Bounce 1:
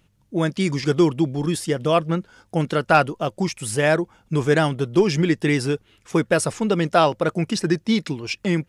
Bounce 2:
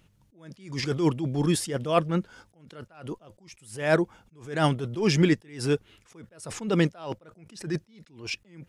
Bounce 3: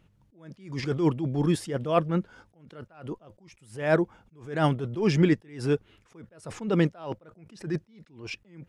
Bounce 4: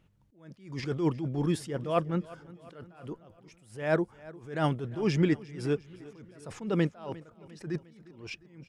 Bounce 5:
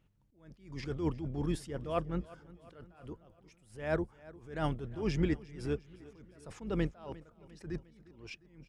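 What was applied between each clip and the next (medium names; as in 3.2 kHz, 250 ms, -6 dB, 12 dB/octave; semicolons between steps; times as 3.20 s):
attacks held to a fixed rise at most 120 dB/s
treble shelf 3.3 kHz -10.5 dB
feedback delay 353 ms, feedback 54%, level -20 dB; trim -4 dB
octave divider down 2 oct, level -5 dB; trim -6 dB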